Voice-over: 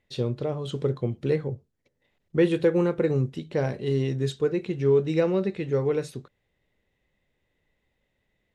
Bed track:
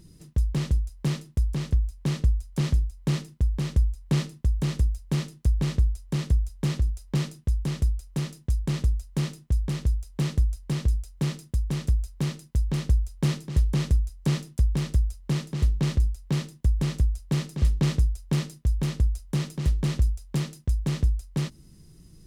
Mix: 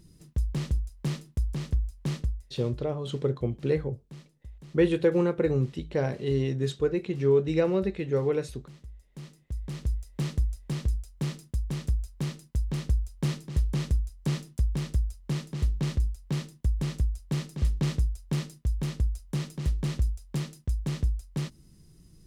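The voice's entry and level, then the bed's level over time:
2.40 s, -1.5 dB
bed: 2.13 s -4 dB
2.80 s -22 dB
8.88 s -22 dB
9.93 s -4 dB

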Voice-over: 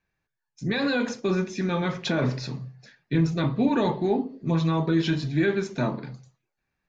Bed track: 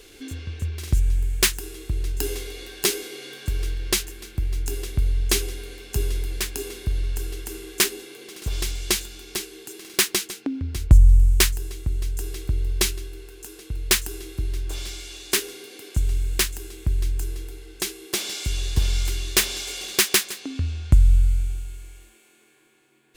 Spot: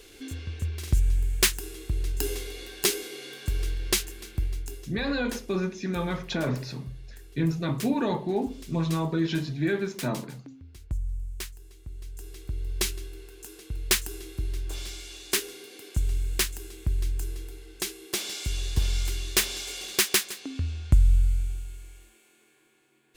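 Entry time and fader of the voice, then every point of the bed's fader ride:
4.25 s, -3.5 dB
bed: 4.42 s -2.5 dB
5.03 s -19 dB
11.56 s -19 dB
13.01 s -4 dB

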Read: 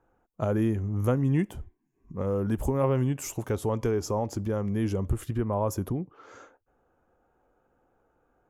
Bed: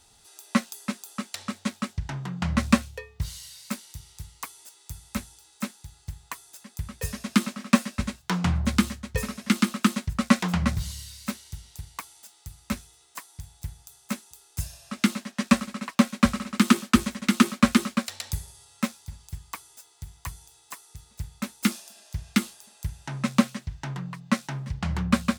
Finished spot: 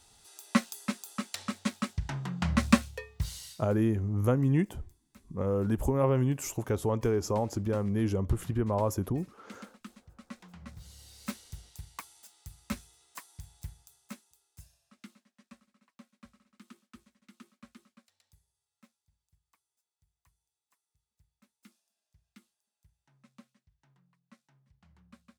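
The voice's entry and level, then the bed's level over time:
3.20 s, -1.0 dB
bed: 3.51 s -2.5 dB
3.74 s -26.5 dB
10.53 s -26.5 dB
11.28 s -6 dB
13.61 s -6 dB
15.50 s -35 dB

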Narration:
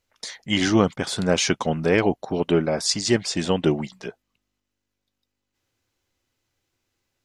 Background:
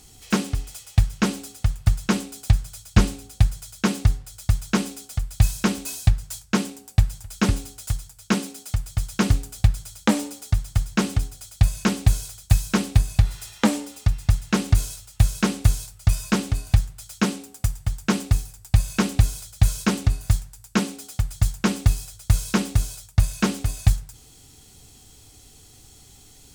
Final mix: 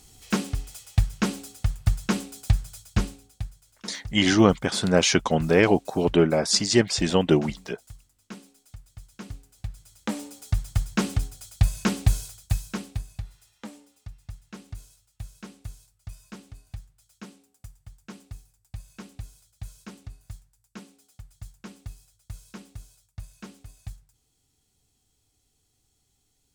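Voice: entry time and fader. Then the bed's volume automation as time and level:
3.65 s, +1.0 dB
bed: 2.76 s -3.5 dB
3.64 s -20 dB
9.48 s -20 dB
10.58 s -3 dB
12.19 s -3 dB
13.46 s -21.5 dB

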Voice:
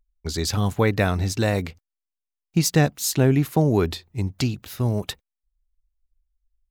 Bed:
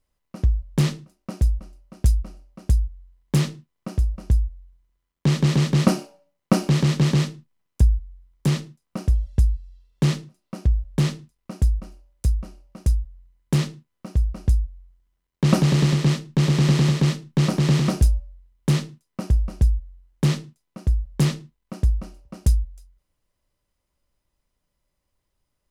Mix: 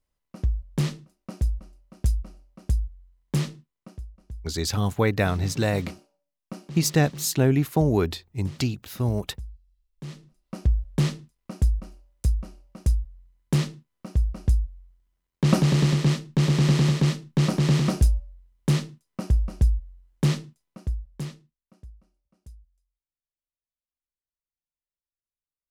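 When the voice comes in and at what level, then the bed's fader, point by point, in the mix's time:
4.20 s, -2.0 dB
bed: 3.61 s -5 dB
4.11 s -20 dB
10.01 s -20 dB
10.53 s -2 dB
20.58 s -2 dB
22.04 s -28.5 dB

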